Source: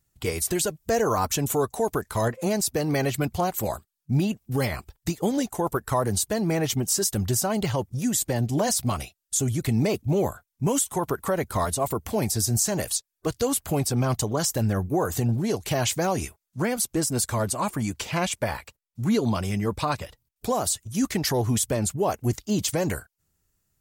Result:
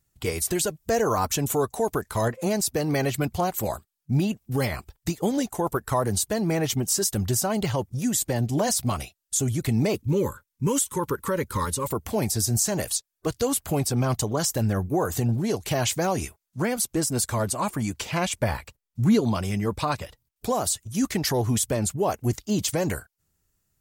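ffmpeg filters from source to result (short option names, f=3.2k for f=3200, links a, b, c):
-filter_complex "[0:a]asettb=1/sr,asplit=3[a][b][c];[a]atrim=end=9.954[d];[b]atrim=start=9.95:end=11.87,asetpts=PTS-STARTPTS,afade=t=in:d=0.004:c=qsin,afade=t=out:st=1.916:d=0.004:c=qsin,asuperstop=centerf=700:order=12:qfactor=2.5[e];[c]atrim=start=11.866[f];[d][e]acrossfade=d=0.004:c1=hsin:c2=qsin[g];[g][f]acrossfade=d=0.004:c1=qsin:c2=hsin,asettb=1/sr,asplit=3[h][i][j];[h]atrim=end=18.344[k];[i]atrim=start=18.34:end=19.21,asetpts=PTS-STARTPTS,afade=t=in:d=0.004:c=qsin,afade=t=out:st=0.866:d=0.004:c=qsin,lowshelf=f=220:g=7.5[l];[j]atrim=start=19.206[m];[k][l]acrossfade=d=0.004:c1=hsin:c2=qsin[n];[n][m]acrossfade=d=0.004:c1=qsin:c2=hsin"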